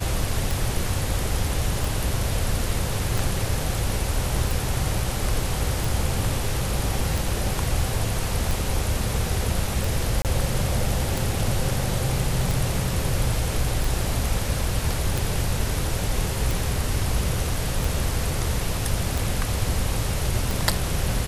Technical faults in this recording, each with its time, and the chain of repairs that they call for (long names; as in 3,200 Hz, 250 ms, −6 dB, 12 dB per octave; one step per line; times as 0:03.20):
scratch tick 45 rpm
0:10.22–0:10.25: drop-out 28 ms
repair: click removal
repair the gap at 0:10.22, 28 ms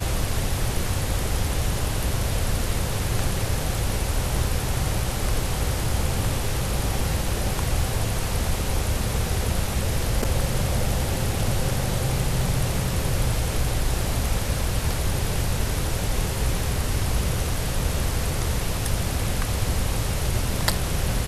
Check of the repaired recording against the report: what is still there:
none of them is left